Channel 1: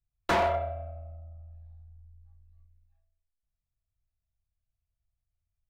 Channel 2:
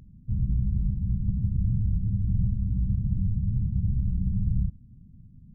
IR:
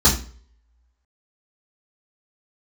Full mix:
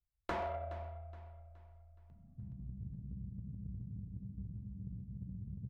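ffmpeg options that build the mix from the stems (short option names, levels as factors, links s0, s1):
-filter_complex "[0:a]acompressor=threshold=0.0316:ratio=3,volume=0.562,asplit=2[s0][s1];[s1]volume=0.2[s2];[1:a]highpass=130,acompressor=threshold=0.0141:ratio=16,adelay=2100,volume=0.596,asplit=2[s3][s4];[s4]volume=0.668[s5];[s2][s5]amix=inputs=2:normalize=0,aecho=0:1:420|840|1260|1680|2100:1|0.39|0.152|0.0593|0.0231[s6];[s0][s3][s6]amix=inputs=3:normalize=0,lowpass=f=2300:p=1,equalizer=f=61:t=o:w=0.41:g=9,aeval=exprs='0.0473*(cos(1*acos(clip(val(0)/0.0473,-1,1)))-cos(1*PI/2))+0.00531*(cos(3*acos(clip(val(0)/0.0473,-1,1)))-cos(3*PI/2))':c=same"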